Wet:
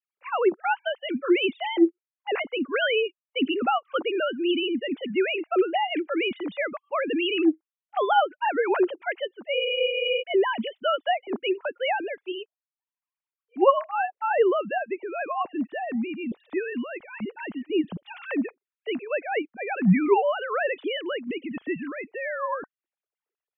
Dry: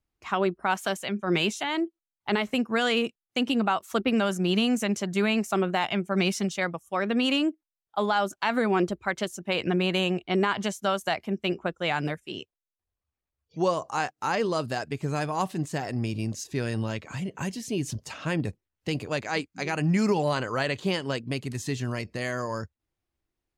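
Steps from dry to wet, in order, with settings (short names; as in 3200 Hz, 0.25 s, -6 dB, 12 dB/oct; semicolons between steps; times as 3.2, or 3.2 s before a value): sine-wave speech; spectral freeze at 9.56, 0.65 s; gain +1.5 dB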